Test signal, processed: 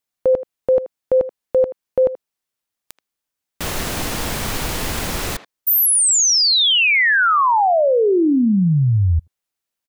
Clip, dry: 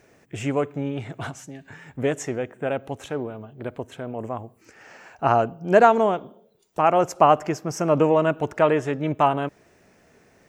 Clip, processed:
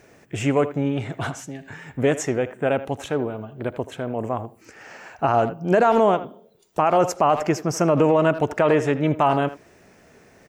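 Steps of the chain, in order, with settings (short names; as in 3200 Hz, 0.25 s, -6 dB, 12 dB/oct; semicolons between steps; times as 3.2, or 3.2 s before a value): speakerphone echo 80 ms, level -14 dB; maximiser +12 dB; gain -7.5 dB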